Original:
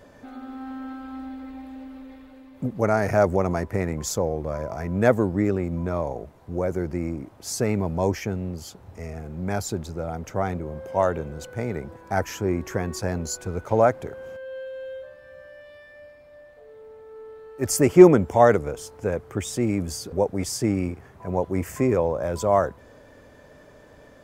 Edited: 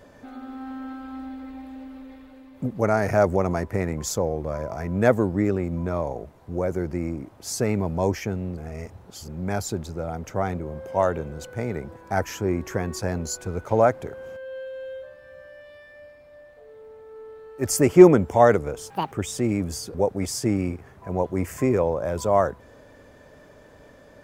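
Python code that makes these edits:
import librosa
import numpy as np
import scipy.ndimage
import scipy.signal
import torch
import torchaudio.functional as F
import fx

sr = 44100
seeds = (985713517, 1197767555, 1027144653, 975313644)

y = fx.edit(x, sr, fx.reverse_span(start_s=8.57, length_s=0.71),
    fx.speed_span(start_s=18.9, length_s=0.4, speed=1.83), tone=tone)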